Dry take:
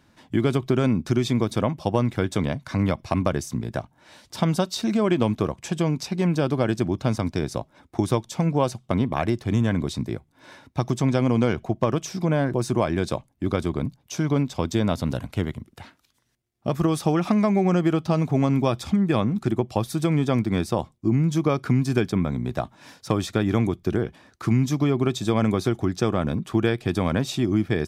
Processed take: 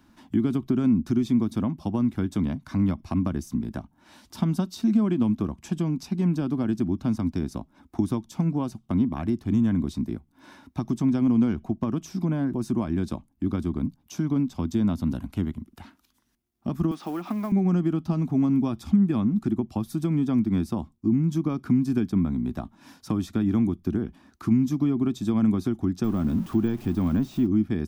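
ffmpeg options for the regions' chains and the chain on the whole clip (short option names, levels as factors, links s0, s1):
-filter_complex "[0:a]asettb=1/sr,asplit=3[s0][s1][s2];[s0]atrim=end=16.914[s3];[s1]atrim=start=16.91:end=17.52,asetpts=PTS-STARTPTS,afade=t=in:d=0.004:c=qsin,afade=t=out:st=0.606:d=0.004:c=qsin,aeval=exprs='val(0)+0.5*0.0188*sgn(val(0))':c=same,highpass=400,lowpass=4100,acrusher=bits=5:mode=log:mix=0:aa=0.000001[s4];[s2]atrim=start=17.516[s5];[s3][s4]acrossfade=d=0.004:c1=hsin:c2=qsin[s6];[s6][s5]acrossfade=d=0.004:c1=qsin:c2=hsin,asettb=1/sr,asplit=3[s7][s8][s9];[s7]atrim=end=26.044[s10];[s8]atrim=start=26.04:end=27.47,asetpts=PTS-STARTPTS,afade=t=in:d=0.004:c=qsin,afade=t=out:st=1.426:d=0.004:c=qsin,aeval=exprs='val(0)+0.5*0.0282*sgn(val(0))':c=same,deesser=0.75[s11];[s9]atrim=start=27.466[s12];[s10][s11]acrossfade=d=0.004:c1=hsin:c2=qsin[s13];[s13][s12]acrossfade=d=0.004:c1=qsin:c2=hsin,equalizer=f=125:t=o:w=1:g=-12,equalizer=f=250:t=o:w=1:g=6,equalizer=f=500:t=o:w=1:g=-12,equalizer=f=2000:t=o:w=1:g=-7,equalizer=f=4000:t=o:w=1:g=-5,equalizer=f=8000:t=o:w=1:g=-6,acrossover=split=280[s14][s15];[s15]acompressor=threshold=0.00178:ratio=1.5[s16];[s14][s16]amix=inputs=2:normalize=0,volume=1.68"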